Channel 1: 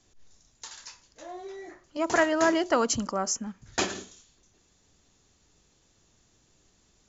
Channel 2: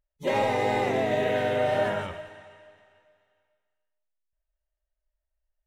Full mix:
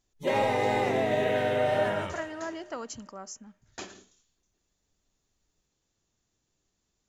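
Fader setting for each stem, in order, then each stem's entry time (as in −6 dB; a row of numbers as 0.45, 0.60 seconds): −13.5, −1.0 decibels; 0.00, 0.00 seconds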